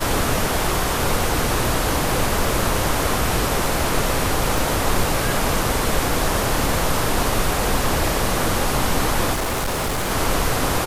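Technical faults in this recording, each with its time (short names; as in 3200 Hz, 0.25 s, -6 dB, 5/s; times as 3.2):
4.58 pop
9.33–10.12 clipped -19.5 dBFS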